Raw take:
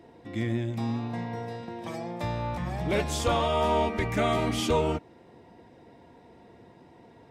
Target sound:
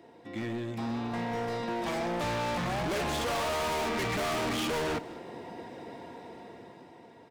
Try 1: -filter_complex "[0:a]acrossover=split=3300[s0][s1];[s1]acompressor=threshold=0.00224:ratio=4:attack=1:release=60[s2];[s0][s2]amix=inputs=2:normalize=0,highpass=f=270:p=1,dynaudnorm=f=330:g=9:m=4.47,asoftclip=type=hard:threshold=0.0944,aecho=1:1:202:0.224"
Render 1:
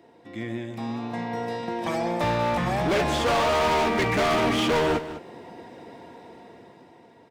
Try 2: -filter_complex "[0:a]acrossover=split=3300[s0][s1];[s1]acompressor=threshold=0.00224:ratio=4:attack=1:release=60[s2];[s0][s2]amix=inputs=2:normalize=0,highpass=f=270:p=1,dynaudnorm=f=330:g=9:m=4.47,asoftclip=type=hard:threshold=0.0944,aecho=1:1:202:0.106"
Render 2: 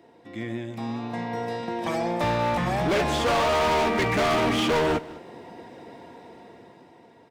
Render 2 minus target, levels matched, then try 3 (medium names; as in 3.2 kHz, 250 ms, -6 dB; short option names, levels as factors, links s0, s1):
hard clipper: distortion -4 dB
-filter_complex "[0:a]acrossover=split=3300[s0][s1];[s1]acompressor=threshold=0.00224:ratio=4:attack=1:release=60[s2];[s0][s2]amix=inputs=2:normalize=0,highpass=f=270:p=1,dynaudnorm=f=330:g=9:m=4.47,asoftclip=type=hard:threshold=0.0316,aecho=1:1:202:0.106"